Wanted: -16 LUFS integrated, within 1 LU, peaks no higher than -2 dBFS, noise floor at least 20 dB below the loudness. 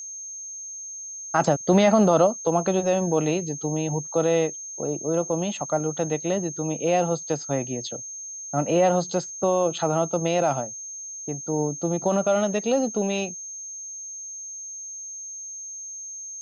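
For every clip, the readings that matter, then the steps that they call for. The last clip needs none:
steady tone 6400 Hz; tone level -34 dBFS; loudness -25.0 LUFS; peak -7.0 dBFS; loudness target -16.0 LUFS
-> notch 6400 Hz, Q 30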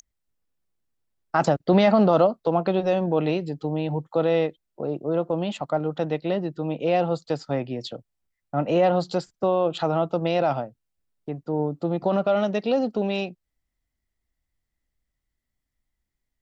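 steady tone none; loudness -24.0 LUFS; peak -7.5 dBFS; loudness target -16.0 LUFS
-> gain +8 dB; limiter -2 dBFS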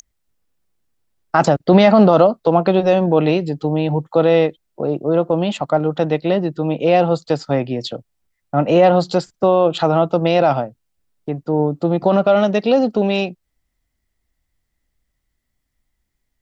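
loudness -16.5 LUFS; peak -2.0 dBFS; noise floor -74 dBFS

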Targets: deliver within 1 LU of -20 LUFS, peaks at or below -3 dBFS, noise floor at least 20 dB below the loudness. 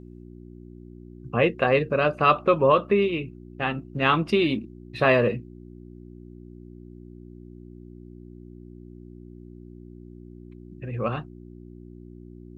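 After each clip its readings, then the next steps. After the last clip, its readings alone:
hum 60 Hz; harmonics up to 360 Hz; hum level -41 dBFS; loudness -23.0 LUFS; peak -6.0 dBFS; loudness target -20.0 LUFS
-> de-hum 60 Hz, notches 6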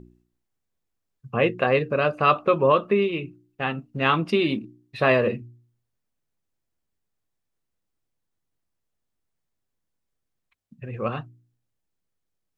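hum none; loudness -23.0 LUFS; peak -6.5 dBFS; loudness target -20.0 LUFS
-> gain +3 dB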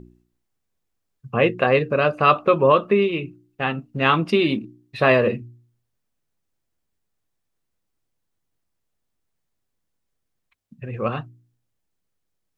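loudness -20.0 LUFS; peak -3.5 dBFS; noise floor -77 dBFS

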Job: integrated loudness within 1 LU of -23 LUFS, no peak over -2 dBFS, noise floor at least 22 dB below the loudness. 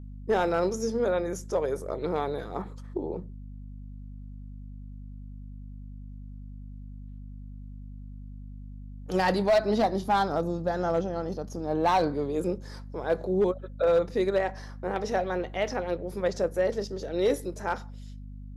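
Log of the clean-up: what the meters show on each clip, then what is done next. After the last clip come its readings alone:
clipped 0.4%; flat tops at -17.0 dBFS; hum 50 Hz; harmonics up to 250 Hz; hum level -39 dBFS; loudness -28.5 LUFS; peak -17.0 dBFS; loudness target -23.0 LUFS
-> clip repair -17 dBFS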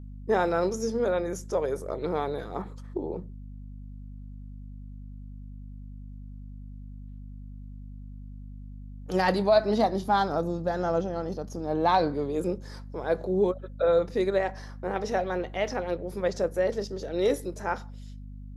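clipped 0.0%; hum 50 Hz; harmonics up to 250 Hz; hum level -39 dBFS
-> de-hum 50 Hz, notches 5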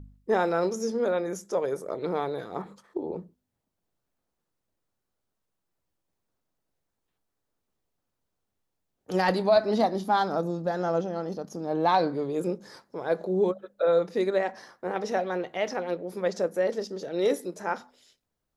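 hum none; loudness -28.0 LUFS; peak -9.0 dBFS; loudness target -23.0 LUFS
-> gain +5 dB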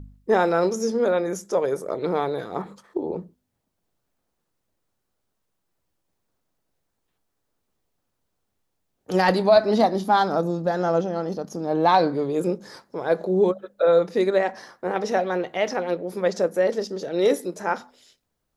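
loudness -23.0 LUFS; peak -4.0 dBFS; noise floor -77 dBFS

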